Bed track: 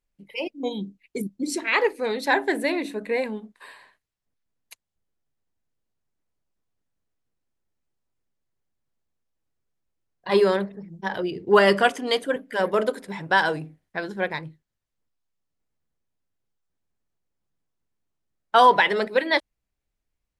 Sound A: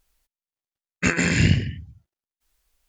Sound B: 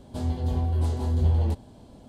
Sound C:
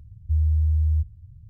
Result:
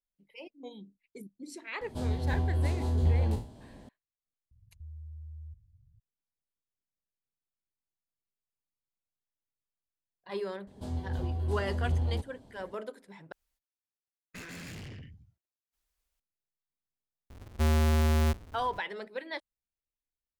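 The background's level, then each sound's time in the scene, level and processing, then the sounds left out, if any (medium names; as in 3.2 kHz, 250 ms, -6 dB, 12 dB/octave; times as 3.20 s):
bed track -17 dB
1.81 s: add B -4 dB + spectral sustain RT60 0.41 s
4.51 s: add C -17 dB + peak limiter -24 dBFS
10.67 s: add B -7.5 dB
13.32 s: replace with A -10.5 dB + valve stage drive 32 dB, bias 0.45
17.30 s: add C -7.5 dB + square wave that keeps the level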